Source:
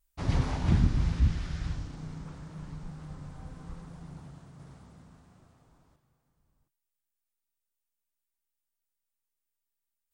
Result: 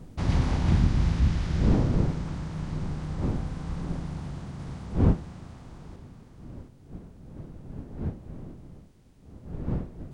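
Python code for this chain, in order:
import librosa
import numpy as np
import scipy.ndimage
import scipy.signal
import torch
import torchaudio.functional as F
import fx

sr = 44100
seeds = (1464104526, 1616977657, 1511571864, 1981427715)

y = fx.bin_compress(x, sr, power=0.6)
y = fx.dmg_wind(y, sr, seeds[0], corner_hz=190.0, level_db=-32.0)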